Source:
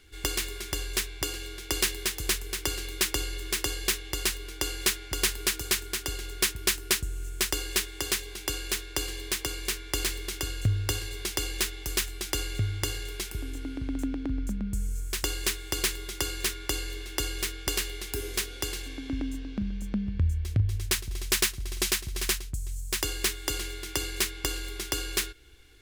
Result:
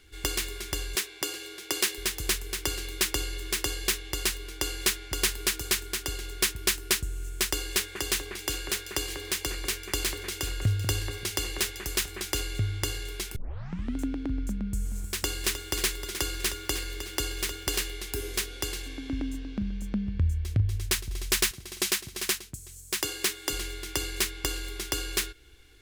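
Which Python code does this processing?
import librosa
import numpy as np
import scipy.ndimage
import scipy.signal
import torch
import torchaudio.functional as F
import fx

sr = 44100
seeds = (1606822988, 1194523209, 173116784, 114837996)

y = fx.highpass(x, sr, hz=220.0, slope=12, at=(0.95, 1.98))
y = fx.echo_alternate(y, sr, ms=193, hz=2200.0, feedback_pct=52, wet_db=-7.0, at=(7.57, 12.41))
y = fx.echo_crushed(y, sr, ms=310, feedback_pct=35, bits=8, wet_db=-10.0, at=(14.54, 17.94))
y = fx.highpass(y, sr, hz=130.0, slope=12, at=(21.51, 23.53))
y = fx.edit(y, sr, fx.tape_start(start_s=13.36, length_s=0.6), tone=tone)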